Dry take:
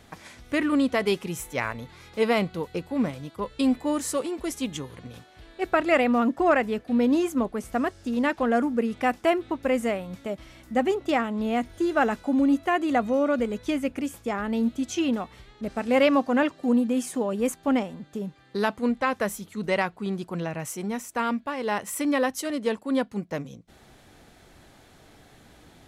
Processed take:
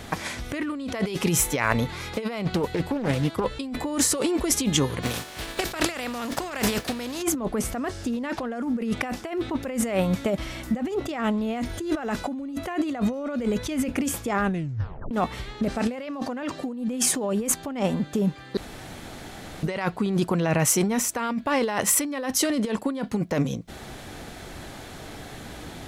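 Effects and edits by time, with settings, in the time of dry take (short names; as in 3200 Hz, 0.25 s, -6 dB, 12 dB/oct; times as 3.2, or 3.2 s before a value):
2.45–3.56 Doppler distortion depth 0.7 ms
5.02–7.21 spectral contrast lowered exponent 0.57
14.41 tape stop 0.70 s
18.57–19.63 room tone
whole clip: dynamic EQ 5100 Hz, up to +3 dB, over -46 dBFS, Q 1.4; negative-ratio compressor -33 dBFS, ratio -1; gain +6.5 dB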